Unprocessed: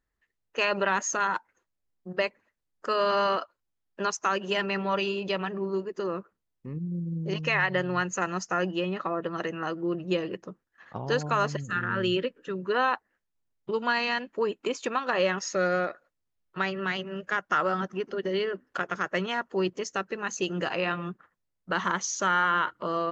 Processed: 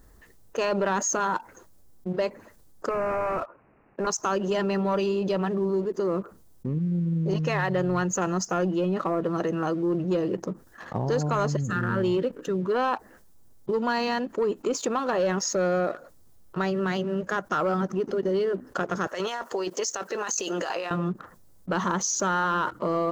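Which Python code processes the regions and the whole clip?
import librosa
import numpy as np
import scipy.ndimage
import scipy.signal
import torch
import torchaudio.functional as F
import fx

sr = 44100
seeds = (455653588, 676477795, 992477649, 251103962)

y = fx.chain(x, sr, fx.highpass(hz=160.0, slope=12),
    fx.clip_hard(threshold_db=-30.0),
    fx.resample_bad(factor=8, down='none', up='filtered'), at=(2.89, 4.07))
y = fx.chain(y, sr, fx.highpass(hz=580.0, slope=12),
    fx.high_shelf(hz=2400.0, db=6.5),
    fx.over_compress(threshold_db=-36.0, ratio=-1.0), at=(19.07, 20.91))
y = fx.peak_eq(y, sr, hz=2400.0, db=-14.0, octaves=1.8)
y = fx.leveller(y, sr, passes=1)
y = fx.env_flatten(y, sr, amount_pct=50)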